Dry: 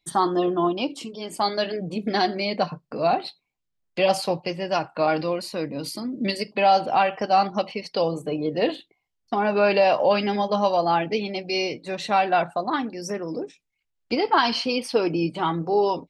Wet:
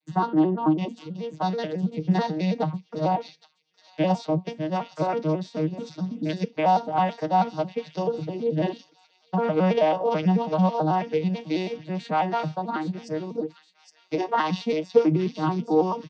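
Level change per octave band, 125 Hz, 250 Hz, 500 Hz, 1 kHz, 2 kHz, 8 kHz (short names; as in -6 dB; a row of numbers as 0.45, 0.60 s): +7.0 dB, +2.5 dB, -2.5 dB, -3.0 dB, -8.0 dB, under -10 dB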